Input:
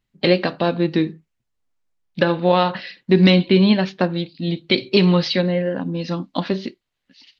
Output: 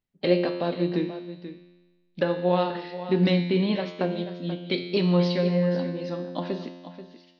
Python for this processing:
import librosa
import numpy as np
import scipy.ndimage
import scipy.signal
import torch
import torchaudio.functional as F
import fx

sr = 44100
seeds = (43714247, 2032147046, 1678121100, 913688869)

y = fx.peak_eq(x, sr, hz=510.0, db=5.5, octaves=1.9)
y = fx.comb_fb(y, sr, f0_hz=88.0, decay_s=1.3, harmonics='all', damping=0.0, mix_pct=80)
y = y + 10.0 ** (-12.5 / 20.0) * np.pad(y, (int(484 * sr / 1000.0), 0))[:len(y)]